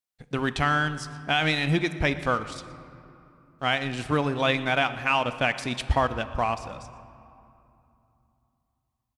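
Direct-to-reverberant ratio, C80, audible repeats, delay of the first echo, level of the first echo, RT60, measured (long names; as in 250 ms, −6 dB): 11.5 dB, 13.5 dB, 1, 119 ms, −20.5 dB, 2.8 s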